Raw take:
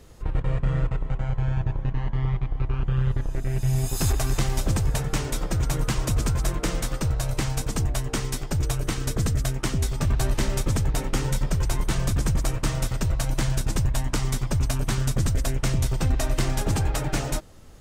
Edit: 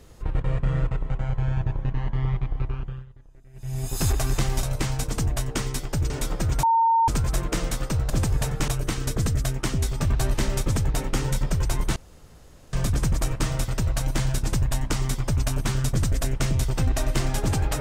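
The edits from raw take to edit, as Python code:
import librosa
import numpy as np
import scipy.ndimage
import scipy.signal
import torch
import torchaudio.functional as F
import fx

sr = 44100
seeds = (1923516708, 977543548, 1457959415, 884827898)

y = fx.edit(x, sr, fx.fade_down_up(start_s=2.56, length_s=1.47, db=-24.0, fade_s=0.5),
    fx.swap(start_s=4.63, length_s=0.58, other_s=7.21, other_length_s=1.47),
    fx.bleep(start_s=5.74, length_s=0.45, hz=912.0, db=-16.0),
    fx.insert_room_tone(at_s=11.96, length_s=0.77), tone=tone)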